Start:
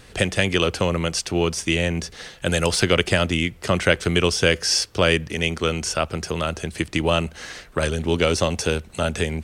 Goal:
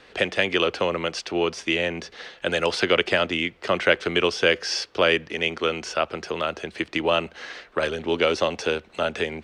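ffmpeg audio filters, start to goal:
-filter_complex "[0:a]acrossover=split=260 4800:gain=0.141 1 0.0794[a][b][c];[a][b][c]amix=inputs=3:normalize=0"

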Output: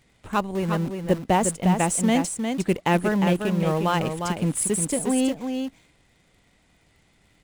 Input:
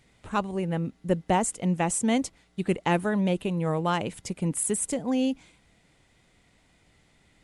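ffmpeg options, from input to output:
-filter_complex "[0:a]asplit=2[a][b];[b]acrusher=bits=6:dc=4:mix=0:aa=0.000001,volume=-7.5dB[c];[a][c]amix=inputs=2:normalize=0,aecho=1:1:356:0.501"

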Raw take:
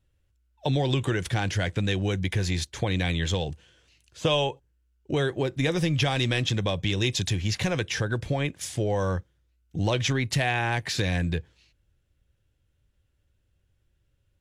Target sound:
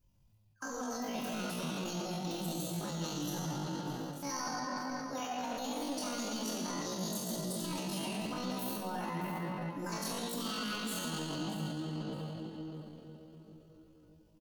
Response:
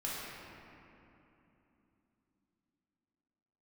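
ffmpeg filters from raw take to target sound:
-filter_complex "[0:a]aemphasis=mode=production:type=50fm[a];[1:a]atrim=start_sample=2205[b];[a][b]afir=irnorm=-1:irlink=0,areverse,acompressor=threshold=-32dB:ratio=6,areverse,aecho=1:1:620|1240|1860:0.211|0.0465|0.0102,asetrate=78577,aresample=44100,atempo=0.561231,volume=-3.5dB"

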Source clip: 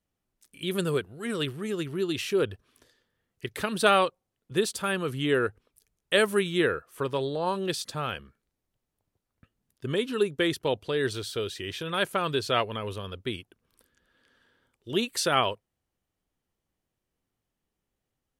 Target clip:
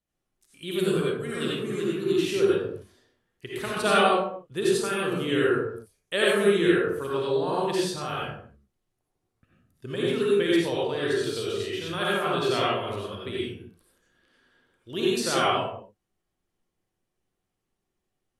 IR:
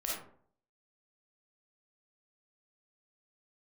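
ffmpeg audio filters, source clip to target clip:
-filter_complex "[1:a]atrim=start_sample=2205,afade=t=out:st=0.27:d=0.01,atrim=end_sample=12348,asetrate=25137,aresample=44100[a];[0:a][a]afir=irnorm=-1:irlink=0,volume=-5.5dB"

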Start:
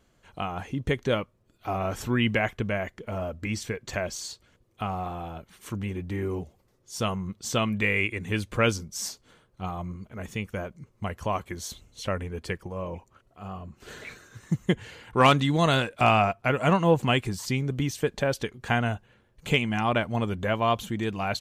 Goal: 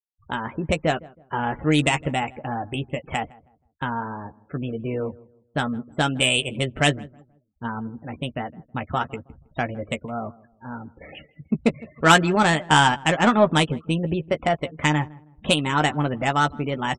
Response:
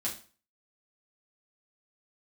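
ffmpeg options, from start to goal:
-filter_complex "[0:a]highshelf=f=3.2k:t=q:w=1.5:g=-8.5,adynamicsmooth=sensitivity=1.5:basefreq=1.5k,equalizer=f=6.1k:t=o:w=0.45:g=12,asetrate=55566,aresample=44100,afftfilt=real='re*gte(hypot(re,im),0.00794)':imag='im*gte(hypot(re,im),0.00794)':win_size=1024:overlap=0.75,asplit=2[a][b];[b]adelay=13,volume=-8.5dB[c];[a][c]amix=inputs=2:normalize=0,asplit=2[d][e];[e]adelay=160,lowpass=f=920:p=1,volume=-20.5dB,asplit=2[f][g];[g]adelay=160,lowpass=f=920:p=1,volume=0.35,asplit=2[h][i];[i]adelay=160,lowpass=f=920:p=1,volume=0.35[j];[d][f][h][j]amix=inputs=4:normalize=0,volume=3.5dB"

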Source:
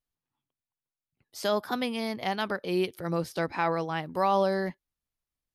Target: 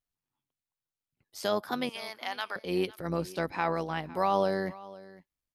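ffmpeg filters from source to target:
-filter_complex "[0:a]asettb=1/sr,asplit=3[a][b][c];[a]atrim=end=1.894[d];[b]atrim=start=1.89:end=2.56,asetpts=PTS-STARTPTS,afade=t=in:d=0.004:c=qsin,afade=t=out:st=0.666:d=0.004:c=qsin,highpass=880[e];[c]atrim=start=2.556[f];[d][e]acrossfade=d=0.004:c1=hsin:c2=qsin[g];[g][f]acrossfade=d=0.004:c1=qsin:c2=hsin,tremolo=f=96:d=0.462,asplit=2[h][i];[i]aecho=0:1:507:0.106[j];[h][j]amix=inputs=2:normalize=0"

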